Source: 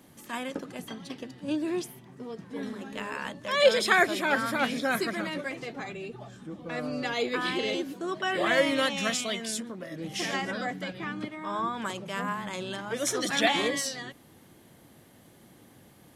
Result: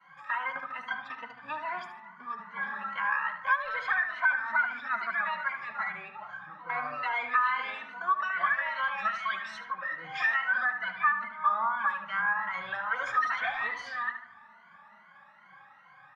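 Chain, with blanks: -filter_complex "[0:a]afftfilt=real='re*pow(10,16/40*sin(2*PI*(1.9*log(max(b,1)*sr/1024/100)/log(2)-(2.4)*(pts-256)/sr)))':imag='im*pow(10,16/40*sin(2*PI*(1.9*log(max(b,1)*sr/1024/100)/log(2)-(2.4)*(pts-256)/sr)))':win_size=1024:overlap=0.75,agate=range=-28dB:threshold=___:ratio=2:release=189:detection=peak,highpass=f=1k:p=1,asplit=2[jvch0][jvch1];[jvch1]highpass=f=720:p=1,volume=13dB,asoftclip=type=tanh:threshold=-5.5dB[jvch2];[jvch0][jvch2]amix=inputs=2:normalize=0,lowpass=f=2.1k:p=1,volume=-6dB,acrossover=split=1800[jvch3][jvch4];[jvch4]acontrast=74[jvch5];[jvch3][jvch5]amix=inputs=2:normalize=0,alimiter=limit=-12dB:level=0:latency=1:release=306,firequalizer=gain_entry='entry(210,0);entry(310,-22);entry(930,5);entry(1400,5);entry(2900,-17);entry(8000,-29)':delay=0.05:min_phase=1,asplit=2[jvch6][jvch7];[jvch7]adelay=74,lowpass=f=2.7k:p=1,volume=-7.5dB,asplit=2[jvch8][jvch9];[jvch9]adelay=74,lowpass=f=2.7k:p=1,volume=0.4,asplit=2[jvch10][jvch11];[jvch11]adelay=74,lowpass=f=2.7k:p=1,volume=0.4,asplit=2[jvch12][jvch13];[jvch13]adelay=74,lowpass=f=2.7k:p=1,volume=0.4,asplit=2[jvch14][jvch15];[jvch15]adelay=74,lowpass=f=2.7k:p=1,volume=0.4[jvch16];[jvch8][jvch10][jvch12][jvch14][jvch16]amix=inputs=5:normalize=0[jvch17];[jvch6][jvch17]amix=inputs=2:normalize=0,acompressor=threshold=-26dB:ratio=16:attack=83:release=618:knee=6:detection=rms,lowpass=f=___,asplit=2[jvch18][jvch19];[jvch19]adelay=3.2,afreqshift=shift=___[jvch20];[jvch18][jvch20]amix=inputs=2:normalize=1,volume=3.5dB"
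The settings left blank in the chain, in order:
-49dB, 6.1k, -0.32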